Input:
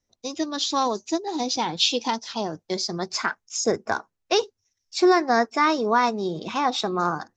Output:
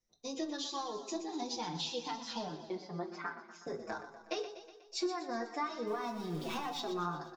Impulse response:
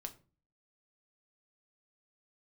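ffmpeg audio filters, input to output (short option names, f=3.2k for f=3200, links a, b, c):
-filter_complex "[0:a]asettb=1/sr,asplit=3[a][b][c];[a]atrim=end=5.874[d];[b]atrim=start=5.87:end=6.8,asetpts=PTS-STARTPTS,afade=t=in:d=0.004:c=qsin,afade=t=out:st=0.926:d=0.004:c=qsin,aeval=exprs='val(0)+0.5*0.0237*sgn(val(0))':c=same[e];[c]atrim=start=6.796[f];[d][e]acrossfade=d=0.004:c1=hsin:c2=qsin[g];[g][f]acrossfade=d=0.004:c1=qsin:c2=hsin,acompressor=threshold=-30dB:ratio=6,asettb=1/sr,asplit=3[h][i][j];[h]atrim=end=2.484[k];[i]atrim=start=2.48:end=3.67,asetpts=PTS-STARTPTS,afade=t=in:d=0.004:c=qsin,afade=t=out:st=1.186:d=0.004:c=qsin,highpass=180,lowpass=2k[l];[j]atrim=start=3.666[m];[k][l]acrossfade=d=0.004:c1=hsin:c2=qsin[n];[n][m]acrossfade=d=0.004:c1=qsin:c2=hsin,aecho=1:1:122|244|366|488|610|732|854:0.299|0.173|0.1|0.0582|0.0338|0.0196|0.0114[o];[1:a]atrim=start_sample=2205[p];[o][p]afir=irnorm=-1:irlink=0,asplit=2[q][r];[r]adelay=5.7,afreqshift=-2.6[s];[q][s]amix=inputs=2:normalize=1"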